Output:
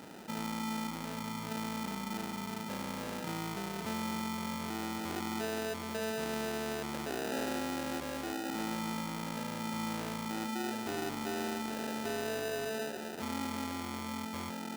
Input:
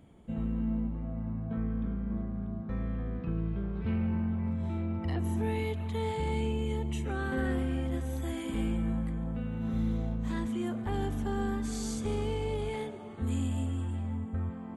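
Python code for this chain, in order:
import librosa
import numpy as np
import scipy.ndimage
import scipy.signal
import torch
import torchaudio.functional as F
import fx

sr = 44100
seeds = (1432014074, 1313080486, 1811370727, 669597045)

y = fx.sample_hold(x, sr, seeds[0], rate_hz=1100.0, jitter_pct=0)
y = scipy.signal.sosfilt(scipy.signal.butter(2, 270.0, 'highpass', fs=sr, output='sos'), y)
y = fx.env_flatten(y, sr, amount_pct=50)
y = y * librosa.db_to_amplitude(-2.5)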